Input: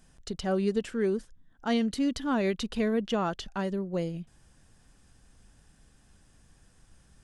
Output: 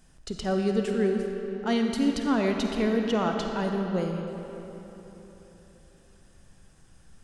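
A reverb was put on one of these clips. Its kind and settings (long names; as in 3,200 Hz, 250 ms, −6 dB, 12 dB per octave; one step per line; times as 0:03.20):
comb and all-pass reverb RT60 3.8 s, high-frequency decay 0.65×, pre-delay 10 ms, DRR 2.5 dB
level +1 dB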